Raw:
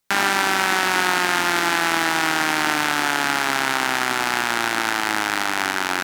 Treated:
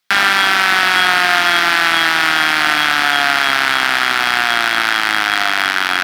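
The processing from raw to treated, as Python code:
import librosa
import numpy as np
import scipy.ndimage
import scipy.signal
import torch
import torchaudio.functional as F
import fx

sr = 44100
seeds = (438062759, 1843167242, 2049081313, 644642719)

y = scipy.signal.sosfilt(scipy.signal.butter(2, 100.0, 'highpass', fs=sr, output='sos'), x)
y = fx.band_shelf(y, sr, hz=2500.0, db=9.5, octaves=2.5)
y = fx.small_body(y, sr, hz=(710.0, 3300.0), ring_ms=100, db=13)
y = np.clip(y, -10.0 ** (-0.5 / 20.0), 10.0 ** (-0.5 / 20.0))
y = y * librosa.db_to_amplitude(-1.0)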